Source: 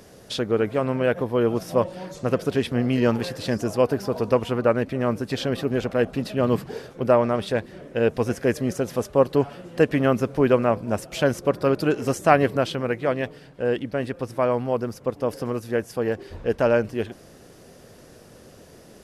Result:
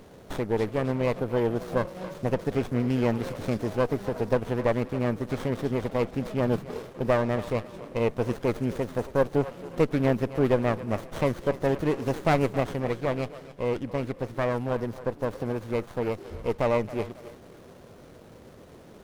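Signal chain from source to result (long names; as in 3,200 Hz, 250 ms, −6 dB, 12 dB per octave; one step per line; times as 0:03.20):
high-shelf EQ 11,000 Hz +11.5 dB
in parallel at −2.5 dB: downward compressor, threshold −30 dBFS, peak gain reduction 18.5 dB
on the sum: feedback echo with a high-pass in the loop 272 ms, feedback 43%, high-pass 420 Hz, level −13.5 dB
windowed peak hold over 17 samples
level −5.5 dB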